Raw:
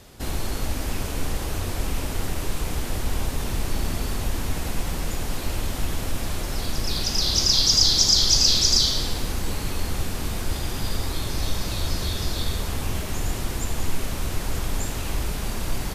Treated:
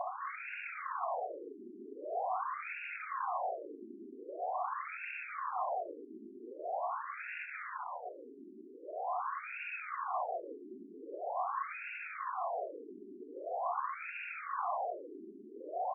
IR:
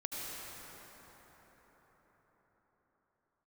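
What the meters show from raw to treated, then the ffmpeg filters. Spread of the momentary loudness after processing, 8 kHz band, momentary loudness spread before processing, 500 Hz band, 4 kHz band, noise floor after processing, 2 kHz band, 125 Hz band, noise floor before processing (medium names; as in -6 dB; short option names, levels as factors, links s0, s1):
13 LU, under -40 dB, 14 LU, -5.5 dB, under -40 dB, -53 dBFS, -7.0 dB, under -40 dB, -30 dBFS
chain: -filter_complex "[0:a]asplit=3[s0][s1][s2];[s0]bandpass=f=730:t=q:w=8,volume=1[s3];[s1]bandpass=f=1090:t=q:w=8,volume=0.501[s4];[s2]bandpass=f=2440:t=q:w=8,volume=0.355[s5];[s3][s4][s5]amix=inputs=3:normalize=0,highshelf=f=3600:g=5,areverse,acompressor=mode=upward:threshold=0.00355:ratio=2.5,areverse,aeval=exprs='0.0531*sin(PI/2*7.08*val(0)/0.0531)':c=same,highpass=220,alimiter=level_in=2.66:limit=0.0631:level=0:latency=1:release=436,volume=0.376,equalizer=f=1000:w=4.7:g=8,asplit=2[s6][s7];[s7]adelay=1633,volume=0.224,highshelf=f=4000:g=-36.7[s8];[s6][s8]amix=inputs=2:normalize=0,afftfilt=real='re*between(b*sr/1024,280*pow(2000/280,0.5+0.5*sin(2*PI*0.44*pts/sr))/1.41,280*pow(2000/280,0.5+0.5*sin(2*PI*0.44*pts/sr))*1.41)':imag='im*between(b*sr/1024,280*pow(2000/280,0.5+0.5*sin(2*PI*0.44*pts/sr))/1.41,280*pow(2000/280,0.5+0.5*sin(2*PI*0.44*pts/sr))*1.41)':win_size=1024:overlap=0.75,volume=1.68"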